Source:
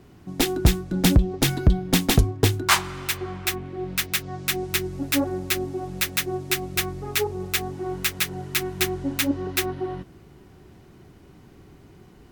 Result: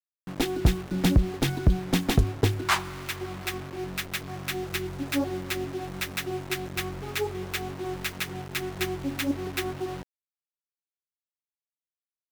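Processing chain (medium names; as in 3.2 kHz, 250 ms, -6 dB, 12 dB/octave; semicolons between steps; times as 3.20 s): bit crusher 6-bit; treble shelf 4.4 kHz -8.5 dB; trim -3.5 dB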